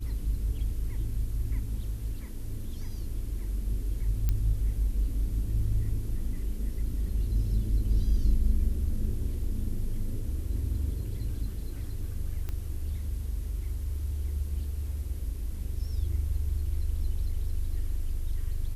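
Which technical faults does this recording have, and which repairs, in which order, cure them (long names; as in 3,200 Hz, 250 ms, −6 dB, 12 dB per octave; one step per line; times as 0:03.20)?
0:04.29: click −16 dBFS
0:12.49: click −22 dBFS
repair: click removal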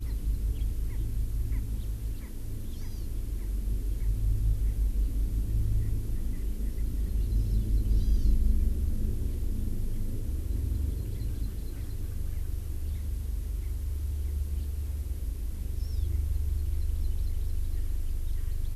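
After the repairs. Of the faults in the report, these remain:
none of them is left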